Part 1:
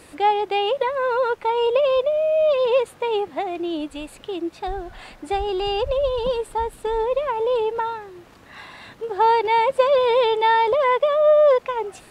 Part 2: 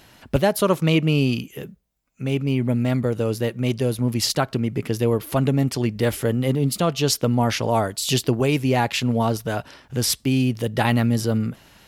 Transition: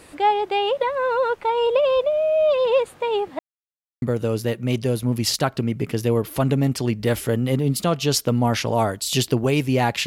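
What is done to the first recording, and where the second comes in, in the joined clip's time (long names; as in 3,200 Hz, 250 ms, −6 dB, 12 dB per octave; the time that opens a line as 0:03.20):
part 1
0:03.39–0:04.02: silence
0:04.02: continue with part 2 from 0:02.98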